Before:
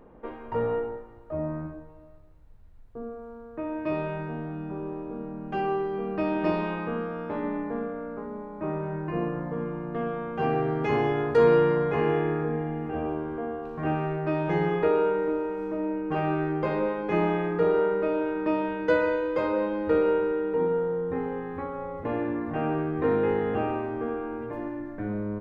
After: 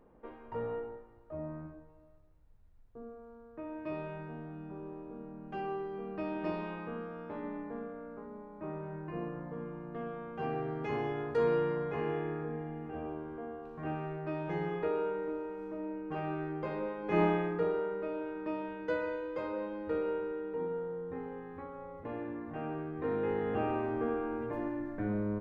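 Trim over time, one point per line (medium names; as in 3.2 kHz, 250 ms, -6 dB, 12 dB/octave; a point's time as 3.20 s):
17.00 s -10 dB
17.21 s -2 dB
17.82 s -11 dB
22.97 s -11 dB
23.90 s -2.5 dB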